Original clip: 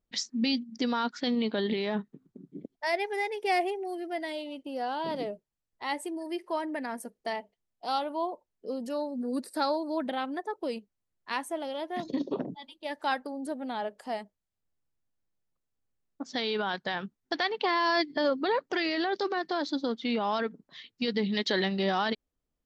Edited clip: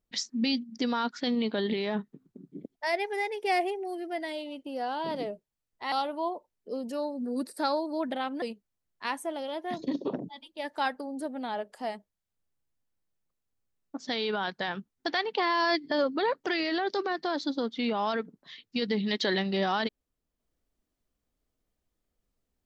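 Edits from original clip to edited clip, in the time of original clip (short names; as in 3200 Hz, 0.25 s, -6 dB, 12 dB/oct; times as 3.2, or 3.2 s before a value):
5.92–7.89 cut
10.39–10.68 cut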